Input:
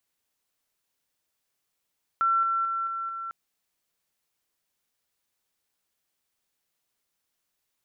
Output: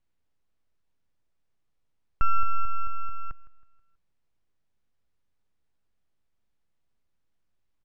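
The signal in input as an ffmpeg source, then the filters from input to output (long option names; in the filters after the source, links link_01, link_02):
-f lavfi -i "aevalsrc='pow(10,(-20-3*floor(t/0.22))/20)*sin(2*PI*1350*t)':duration=1.1:sample_rate=44100"
-af "aeval=exprs='if(lt(val(0),0),0.447*val(0),val(0))':channel_layout=same,aemphasis=mode=reproduction:type=riaa,aecho=1:1:161|322|483|644:0.119|0.0559|0.0263|0.0123"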